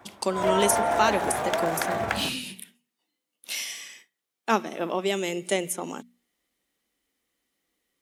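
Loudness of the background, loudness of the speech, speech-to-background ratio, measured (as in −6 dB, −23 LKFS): −26.5 LKFS, −28.5 LKFS, −2.0 dB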